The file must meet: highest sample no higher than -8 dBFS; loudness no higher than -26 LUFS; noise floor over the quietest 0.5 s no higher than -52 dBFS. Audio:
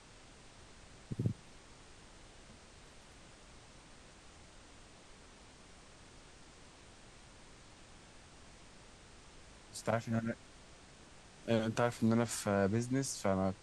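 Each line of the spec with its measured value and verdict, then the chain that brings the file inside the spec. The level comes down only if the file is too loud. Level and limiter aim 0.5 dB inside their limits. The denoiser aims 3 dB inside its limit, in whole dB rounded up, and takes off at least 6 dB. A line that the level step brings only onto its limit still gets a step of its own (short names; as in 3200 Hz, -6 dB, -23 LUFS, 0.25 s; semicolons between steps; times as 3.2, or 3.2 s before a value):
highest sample -17.0 dBFS: OK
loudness -35.5 LUFS: OK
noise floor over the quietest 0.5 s -57 dBFS: OK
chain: none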